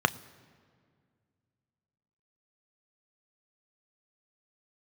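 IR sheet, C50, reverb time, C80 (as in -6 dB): 20.5 dB, 2.0 s, 21.5 dB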